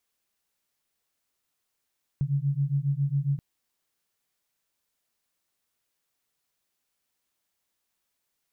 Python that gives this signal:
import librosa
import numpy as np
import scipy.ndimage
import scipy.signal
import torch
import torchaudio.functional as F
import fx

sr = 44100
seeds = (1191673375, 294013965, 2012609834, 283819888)

y = fx.two_tone_beats(sr, length_s=1.18, hz=137.0, beat_hz=7.3, level_db=-26.5)